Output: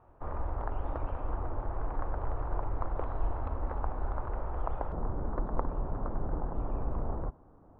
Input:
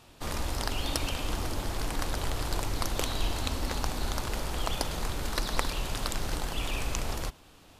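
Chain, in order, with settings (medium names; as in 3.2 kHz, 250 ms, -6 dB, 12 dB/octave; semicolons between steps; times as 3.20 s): low-pass 1.2 kHz 24 dB/octave; peaking EQ 210 Hz -10 dB 1.5 oct, from 4.92 s 2.7 kHz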